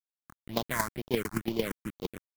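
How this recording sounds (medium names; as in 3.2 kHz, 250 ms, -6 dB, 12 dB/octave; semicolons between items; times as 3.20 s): a quantiser's noise floor 6-bit, dither none; chopped level 8.8 Hz, depth 65%, duty 10%; aliases and images of a low sample rate 2.7 kHz, jitter 20%; phasing stages 4, 2.1 Hz, lowest notch 500–1700 Hz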